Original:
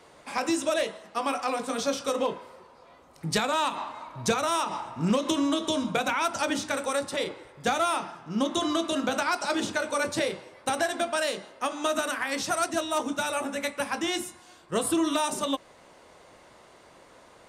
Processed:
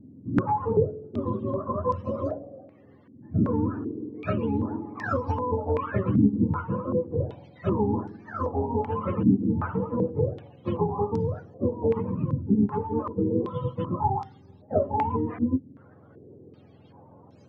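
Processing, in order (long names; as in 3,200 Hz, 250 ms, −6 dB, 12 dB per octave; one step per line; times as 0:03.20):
frequency axis turned over on the octave scale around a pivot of 530 Hz
low-pass on a step sequencer 2.6 Hz 260–5,300 Hz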